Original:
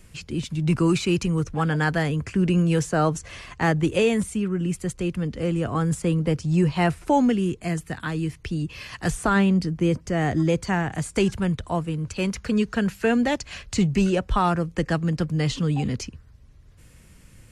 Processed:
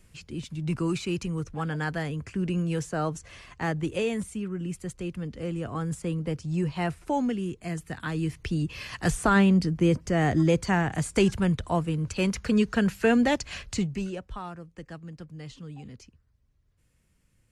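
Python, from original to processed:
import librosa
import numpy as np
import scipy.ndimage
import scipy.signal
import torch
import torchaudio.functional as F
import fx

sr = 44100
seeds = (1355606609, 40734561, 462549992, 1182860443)

y = fx.gain(x, sr, db=fx.line((7.58, -7.5), (8.4, -0.5), (13.65, -0.5), (13.89, -9.5), (14.52, -18.0)))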